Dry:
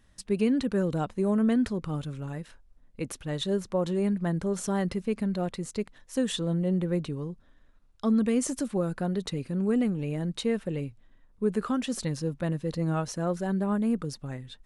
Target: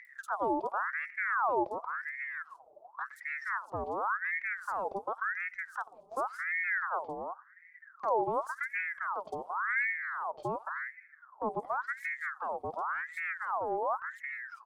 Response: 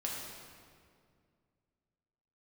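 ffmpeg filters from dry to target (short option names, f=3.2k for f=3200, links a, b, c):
-filter_complex "[0:a]aeval=exprs='if(lt(val(0),0),0.447*val(0),val(0))':c=same,agate=range=-13dB:threshold=-51dB:ratio=16:detection=peak,firequalizer=gain_entry='entry(250,0);entry(1200,-28);entry(4800,-17)':delay=0.05:min_phase=1,acompressor=mode=upward:threshold=-32dB:ratio=2.5,acrossover=split=4200[a][b];[b]adelay=50[c];[a][c]amix=inputs=2:normalize=0,asplit=2[d][e];[1:a]atrim=start_sample=2205,adelay=89[f];[e][f]afir=irnorm=-1:irlink=0,volume=-24dB[g];[d][g]amix=inputs=2:normalize=0,aeval=exprs='val(0)*sin(2*PI*1300*n/s+1300*0.55/0.91*sin(2*PI*0.91*n/s))':c=same"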